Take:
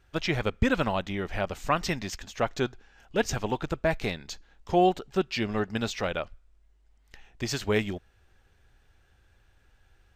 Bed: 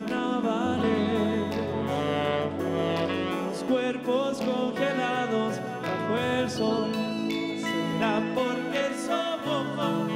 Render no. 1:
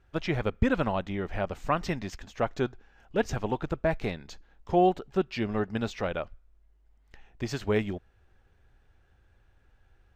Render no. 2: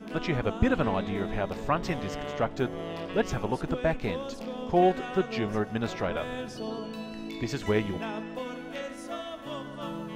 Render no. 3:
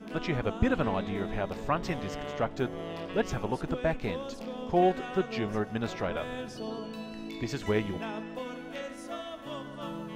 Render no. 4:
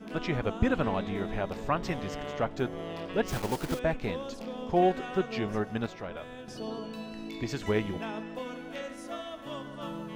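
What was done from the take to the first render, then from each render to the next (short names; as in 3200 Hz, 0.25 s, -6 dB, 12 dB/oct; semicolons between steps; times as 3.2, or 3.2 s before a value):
high shelf 2500 Hz -10.5 dB
add bed -9.5 dB
gain -2 dB
3.28–3.8 block floating point 3-bit; 5.86–6.48 gain -7 dB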